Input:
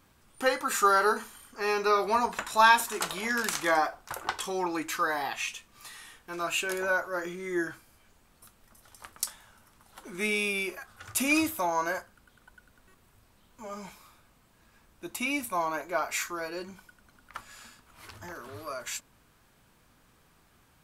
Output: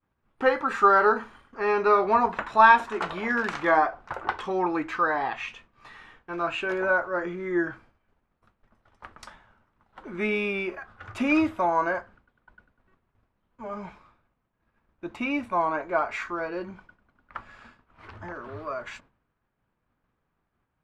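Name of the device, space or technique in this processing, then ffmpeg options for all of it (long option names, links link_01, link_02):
hearing-loss simulation: -af "lowpass=1900,agate=range=-33dB:threshold=-52dB:ratio=3:detection=peak,volume=5dB"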